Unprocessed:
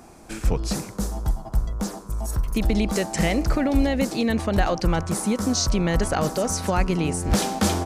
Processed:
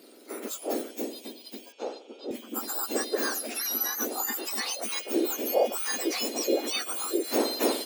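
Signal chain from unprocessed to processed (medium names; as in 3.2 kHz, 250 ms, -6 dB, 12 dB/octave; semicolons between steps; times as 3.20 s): spectrum inverted on a logarithmic axis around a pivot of 1.8 kHz; 1.72–2.31 s: cabinet simulation 420–5300 Hz, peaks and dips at 490 Hz +5 dB, 830 Hz +9 dB, 1.3 kHz +8 dB, 2 kHz -9 dB, 3.2 kHz -5 dB, 4.8 kHz -5 dB; trim -2.5 dB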